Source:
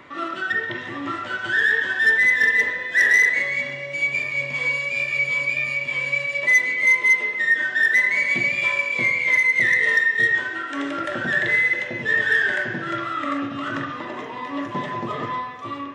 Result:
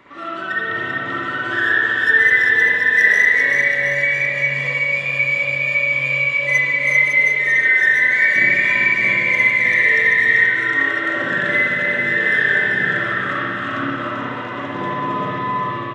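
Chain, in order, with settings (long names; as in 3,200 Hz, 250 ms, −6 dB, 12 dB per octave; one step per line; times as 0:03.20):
bouncing-ball delay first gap 390 ms, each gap 0.85×, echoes 5
spring reverb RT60 1.3 s, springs 58 ms, chirp 35 ms, DRR −6 dB
level −4.5 dB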